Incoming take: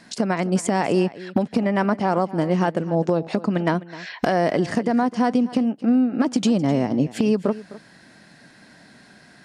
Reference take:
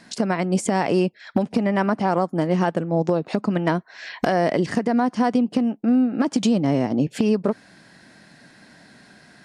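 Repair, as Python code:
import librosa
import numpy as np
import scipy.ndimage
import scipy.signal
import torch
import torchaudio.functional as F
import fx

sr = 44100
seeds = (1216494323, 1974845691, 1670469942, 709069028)

y = fx.fix_echo_inverse(x, sr, delay_ms=257, level_db=-17.5)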